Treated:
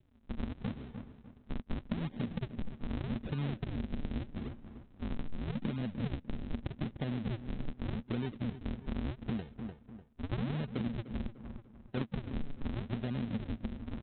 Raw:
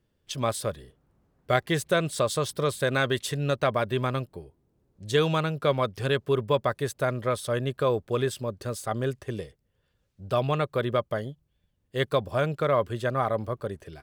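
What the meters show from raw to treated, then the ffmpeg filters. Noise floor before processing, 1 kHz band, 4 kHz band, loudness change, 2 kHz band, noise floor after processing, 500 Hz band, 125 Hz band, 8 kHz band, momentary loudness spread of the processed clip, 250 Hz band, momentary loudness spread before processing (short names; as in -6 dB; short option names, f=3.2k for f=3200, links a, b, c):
-74 dBFS, -20.0 dB, -17.0 dB, -12.0 dB, -17.5 dB, -62 dBFS, -21.0 dB, -7.5 dB, under -40 dB, 9 LU, -3.5 dB, 9 LU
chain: -filter_complex "[0:a]acrossover=split=310|3000[a][b][c];[b]acompressor=threshold=-44dB:ratio=3[d];[a][d][c]amix=inputs=3:normalize=0,aresample=8000,acrusher=samples=31:mix=1:aa=0.000001:lfo=1:lforange=49.6:lforate=0.82,aresample=44100,equalizer=f=230:w=3.1:g=14.5,asplit=2[e][f];[f]adelay=298,lowpass=f=2.3k:p=1,volume=-15.5dB,asplit=2[g][h];[h]adelay=298,lowpass=f=2.3k:p=1,volume=0.33,asplit=2[i][j];[j]adelay=298,lowpass=f=2.3k:p=1,volume=0.33[k];[e][g][i][k]amix=inputs=4:normalize=0,adynamicequalizer=threshold=0.00282:dfrequency=1100:dqfactor=1.4:tfrequency=1100:tqfactor=1.4:attack=5:release=100:ratio=0.375:range=3:mode=cutabove:tftype=bell,acompressor=threshold=-38dB:ratio=4,volume=3.5dB"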